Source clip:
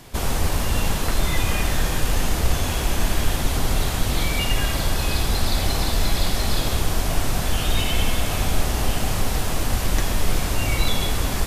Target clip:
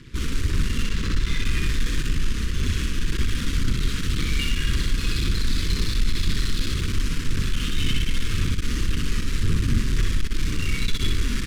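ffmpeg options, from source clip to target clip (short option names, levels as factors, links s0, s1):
-filter_complex "[0:a]asettb=1/sr,asplit=3[s0][s1][s2];[s0]atrim=end=0.844[s3];[s1]atrim=start=0.84:end=1.45,asetpts=PTS-STARTPTS,afade=t=in:d=0.004:c=qsin,afade=t=out:st=0.606:d=0.004:c=qsin,lowpass=7800[s4];[s2]atrim=start=1.446[s5];[s3][s4]acrossfade=d=0.004:c1=hsin:c2=qsin[s6];[s6][s5]acrossfade=d=0.004:c1=qsin:c2=hsin,asettb=1/sr,asplit=3[s7][s8][s9];[s7]atrim=end=2.064[s10];[s8]atrim=start=2.06:end=3.09,asetpts=PTS-STARTPTS,afade=t=in:d=0.004:c=qsin,afade=t=out:st=1.026:d=0.004:c=qsin,acompressor=threshold=0.141:ratio=3[s11];[s9]atrim=start=3.086[s12];[s10][s11]acrossfade=d=0.004:c1=hsin:c2=qsin[s13];[s13][s12]acrossfade=d=0.004:c1=qsin:c2=hsin,asettb=1/sr,asplit=3[s14][s15][s16];[s14]atrim=end=9.434[s17];[s15]atrim=start=9.43:end=9.91,asetpts=PTS-STARTPTS,afade=t=in:d=0.004:c=qsin,afade=t=out:st=0.476:d=0.004:c=qsin,equalizer=f=110:t=o:w=2.2:g=11[s18];[s16]atrim=start=9.906[s19];[s17][s18]acrossfade=d=0.004:c1=hsin:c2=qsin[s20];[s20][s19]acrossfade=d=0.004:c1=qsin:c2=hsin,tremolo=f=140:d=0.519,aphaser=in_gain=1:out_gain=1:delay=4.3:decay=0.36:speed=1.9:type=sinusoidal,asoftclip=type=hard:threshold=0.126,adynamicsmooth=sensitivity=6:basefreq=4600,asuperstop=centerf=720:order=4:qfactor=0.69,aecho=1:1:30|63:0.15|0.708"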